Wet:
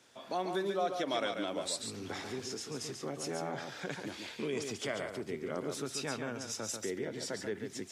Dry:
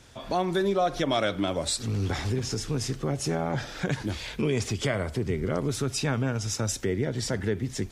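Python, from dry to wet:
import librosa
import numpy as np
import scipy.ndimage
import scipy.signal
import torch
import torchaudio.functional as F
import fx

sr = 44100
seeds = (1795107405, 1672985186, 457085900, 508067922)

p1 = scipy.signal.sosfilt(scipy.signal.butter(2, 260.0, 'highpass', fs=sr, output='sos'), x)
p2 = p1 + fx.echo_single(p1, sr, ms=140, db=-6.0, dry=0)
y = p2 * 10.0 ** (-8.0 / 20.0)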